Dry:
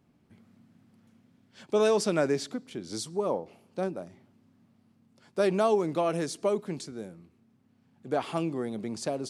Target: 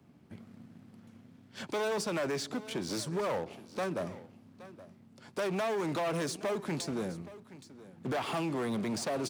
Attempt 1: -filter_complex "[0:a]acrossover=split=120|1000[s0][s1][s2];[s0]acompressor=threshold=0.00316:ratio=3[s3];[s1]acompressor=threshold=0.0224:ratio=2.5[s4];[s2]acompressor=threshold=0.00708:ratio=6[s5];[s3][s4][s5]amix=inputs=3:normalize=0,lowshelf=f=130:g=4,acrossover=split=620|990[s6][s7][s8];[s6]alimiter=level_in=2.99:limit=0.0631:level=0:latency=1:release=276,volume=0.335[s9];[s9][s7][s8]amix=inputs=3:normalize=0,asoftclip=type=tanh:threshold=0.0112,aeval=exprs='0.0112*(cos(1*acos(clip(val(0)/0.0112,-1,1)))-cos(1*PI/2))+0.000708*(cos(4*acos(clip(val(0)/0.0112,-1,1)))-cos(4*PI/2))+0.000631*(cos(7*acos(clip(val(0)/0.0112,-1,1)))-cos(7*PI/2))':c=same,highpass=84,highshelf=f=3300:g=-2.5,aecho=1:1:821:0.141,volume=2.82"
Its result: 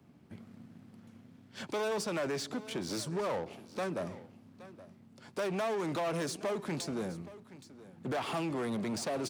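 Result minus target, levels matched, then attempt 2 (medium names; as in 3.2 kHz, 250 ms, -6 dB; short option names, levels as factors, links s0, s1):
saturation: distortion +8 dB
-filter_complex "[0:a]acrossover=split=120|1000[s0][s1][s2];[s0]acompressor=threshold=0.00316:ratio=3[s3];[s1]acompressor=threshold=0.0224:ratio=2.5[s4];[s2]acompressor=threshold=0.00708:ratio=6[s5];[s3][s4][s5]amix=inputs=3:normalize=0,lowshelf=f=130:g=4,acrossover=split=620|990[s6][s7][s8];[s6]alimiter=level_in=2.99:limit=0.0631:level=0:latency=1:release=276,volume=0.335[s9];[s9][s7][s8]amix=inputs=3:normalize=0,asoftclip=type=tanh:threshold=0.0266,aeval=exprs='0.0112*(cos(1*acos(clip(val(0)/0.0112,-1,1)))-cos(1*PI/2))+0.000708*(cos(4*acos(clip(val(0)/0.0112,-1,1)))-cos(4*PI/2))+0.000631*(cos(7*acos(clip(val(0)/0.0112,-1,1)))-cos(7*PI/2))':c=same,highpass=84,highshelf=f=3300:g=-2.5,aecho=1:1:821:0.141,volume=2.82"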